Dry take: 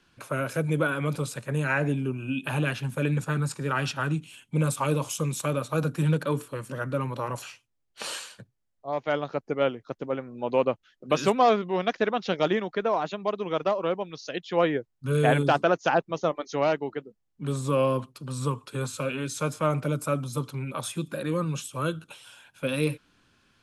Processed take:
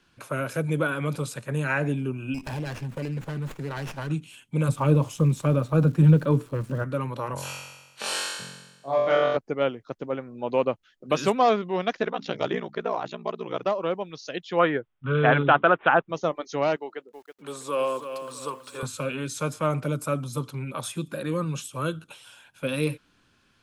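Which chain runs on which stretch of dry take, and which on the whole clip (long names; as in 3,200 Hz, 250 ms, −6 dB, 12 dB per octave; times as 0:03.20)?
0:02.34–0:04.10: parametric band 1,300 Hz −12.5 dB 0.25 octaves + downward compressor 3 to 1, threshold −28 dBFS + windowed peak hold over 9 samples
0:04.68–0:06.83: spectral tilt −3 dB per octave + surface crackle 500 per second −44 dBFS
0:07.34–0:09.37: high-pass filter 94 Hz + flutter between parallel walls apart 3.8 metres, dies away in 1.1 s
0:12.02–0:13.66: mains-hum notches 60/120/180/240/300 Hz + ring modulation 30 Hz
0:14.59–0:16.09: parametric band 1,300 Hz +9 dB 0.93 octaves + bad sample-rate conversion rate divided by 6×, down none, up filtered
0:16.76–0:18.83: high-pass filter 450 Hz + feedback echo at a low word length 324 ms, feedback 35%, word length 9 bits, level −9 dB
whole clip: no processing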